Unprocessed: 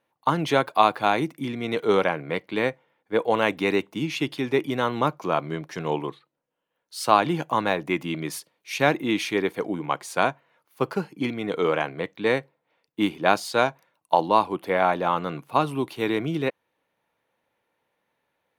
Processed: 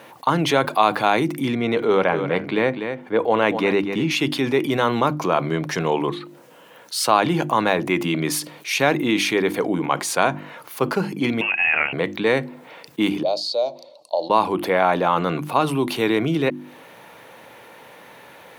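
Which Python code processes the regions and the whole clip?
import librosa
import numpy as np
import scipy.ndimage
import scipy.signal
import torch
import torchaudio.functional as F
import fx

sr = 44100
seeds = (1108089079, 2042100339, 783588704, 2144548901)

y = fx.chain(x, sr, fx.high_shelf(hz=4500.0, db=-11.0),
    fx.echo_single(ms=245, db=-15.0), at=(1.55, 4.11))
y = fx.chain(y, sr, fx.highpass(hz=370.0, slope=6),
    fx.freq_invert(carrier_hz=3000), at=(11.41, 11.93))
y = fx.chain(y, sr, fx.double_bandpass(hz=1600.0, octaves=2.9),
    fx.notch(hz=2800.0, q=28.0), at=(13.23, 14.3))
y = scipy.signal.sosfilt(scipy.signal.butter(2, 96.0, 'highpass', fs=sr, output='sos'), y)
y = fx.hum_notches(y, sr, base_hz=50, count=7)
y = fx.env_flatten(y, sr, amount_pct=50)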